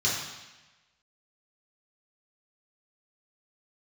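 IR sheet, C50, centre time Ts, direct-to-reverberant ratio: 2.0 dB, 63 ms, -6.5 dB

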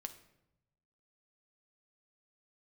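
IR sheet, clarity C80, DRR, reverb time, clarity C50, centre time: 15.5 dB, 7.5 dB, 0.90 s, 12.5 dB, 8 ms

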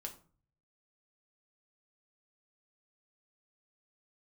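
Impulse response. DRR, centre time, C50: 2.0 dB, 11 ms, 12.5 dB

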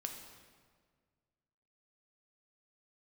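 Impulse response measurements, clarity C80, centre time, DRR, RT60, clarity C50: 7.0 dB, 39 ms, 3.0 dB, 1.7 s, 5.5 dB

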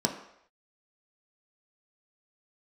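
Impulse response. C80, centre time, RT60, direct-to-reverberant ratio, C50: 11.0 dB, 19 ms, not exponential, 1.5 dB, 9.0 dB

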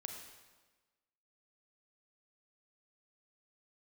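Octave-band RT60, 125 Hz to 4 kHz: 1.2, 1.3, 1.3, 1.3, 1.2, 1.1 s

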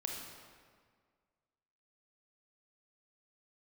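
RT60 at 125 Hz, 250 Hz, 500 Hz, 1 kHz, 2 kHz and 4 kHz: 1.8, 1.9, 1.8, 1.8, 1.6, 1.3 s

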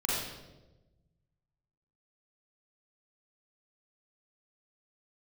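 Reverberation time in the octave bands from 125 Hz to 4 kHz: 2.0, 1.5, 1.3, 0.90, 0.80, 0.80 s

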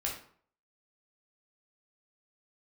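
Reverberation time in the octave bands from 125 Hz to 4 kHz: 0.60, 0.50, 0.55, 0.55, 0.45, 0.35 s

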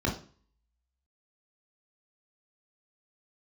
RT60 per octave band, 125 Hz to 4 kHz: 0.55, 0.45, 0.45, 0.40, 0.40, 0.40 s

